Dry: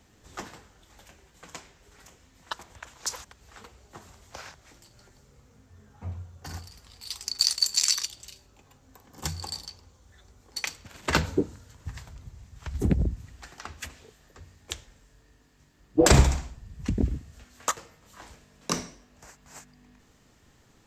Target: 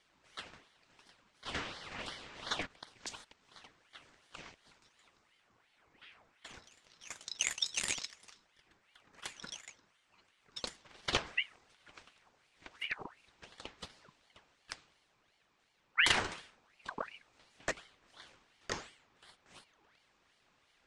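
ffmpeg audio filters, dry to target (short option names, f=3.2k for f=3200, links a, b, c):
-filter_complex "[0:a]asplit=3[a][b][c];[a]afade=t=out:st=1.45:d=0.02[d];[b]asplit=2[e][f];[f]highpass=f=720:p=1,volume=31dB,asoftclip=type=tanh:threshold=-16dB[g];[e][g]amix=inputs=2:normalize=0,lowpass=f=2k:p=1,volume=-6dB,afade=t=in:st=1.45:d=0.02,afade=t=out:st=2.65:d=0.02[h];[c]afade=t=in:st=2.65:d=0.02[i];[d][h][i]amix=inputs=3:normalize=0,highpass=330,lowpass=4.5k,aeval=exprs='val(0)*sin(2*PI*1600*n/s+1600*0.65/2.8*sin(2*PI*2.8*n/s))':c=same,volume=-4dB"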